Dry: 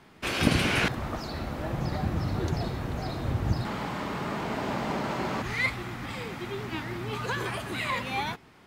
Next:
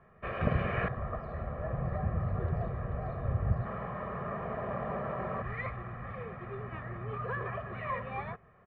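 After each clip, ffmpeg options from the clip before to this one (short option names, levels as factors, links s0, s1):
-af "lowpass=f=1800:w=0.5412,lowpass=f=1800:w=1.3066,aecho=1:1:1.7:0.84,volume=0.501"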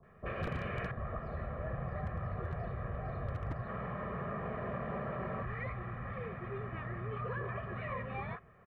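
-filter_complex "[0:a]acrossover=split=840[s0][s1];[s1]adelay=30[s2];[s0][s2]amix=inputs=2:normalize=0,aeval=exprs='0.075*(abs(mod(val(0)/0.075+3,4)-2)-1)':c=same,acrossover=split=520|1100[s3][s4][s5];[s3]acompressor=threshold=0.0126:ratio=4[s6];[s4]acompressor=threshold=0.00447:ratio=4[s7];[s5]acompressor=threshold=0.00562:ratio=4[s8];[s6][s7][s8]amix=inputs=3:normalize=0,volume=1.12"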